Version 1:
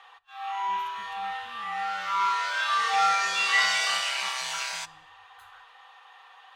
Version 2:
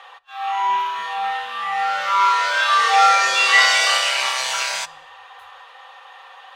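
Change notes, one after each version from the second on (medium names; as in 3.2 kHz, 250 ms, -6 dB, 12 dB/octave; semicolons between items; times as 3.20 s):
background +9.0 dB; master: add peaking EQ 550 Hz +10 dB 0.27 oct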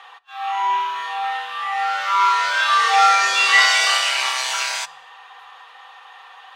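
speech -10.0 dB; master: add peaking EQ 550 Hz -10 dB 0.27 oct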